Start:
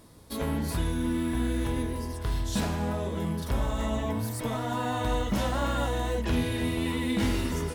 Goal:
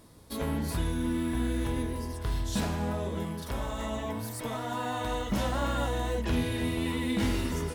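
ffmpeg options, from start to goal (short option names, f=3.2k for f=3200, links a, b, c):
-filter_complex "[0:a]asettb=1/sr,asplit=3[a][b][c];[a]atrim=end=3.234[d];[b]atrim=start=3.23:end=5.3,asetpts=PTS-STARTPTS,afade=t=in:d=0.004:c=qsin,afade=t=out:st=2.066:d=0.004:c=qsin,lowshelf=f=280:g=-6[e];[c]atrim=start=5.296[f];[d][e]acrossfade=d=0.004:c1=hsin:c2=qsin[g];[g][f]acrossfade=d=0.004:c1=qsin:c2=hsin,volume=-1.5dB"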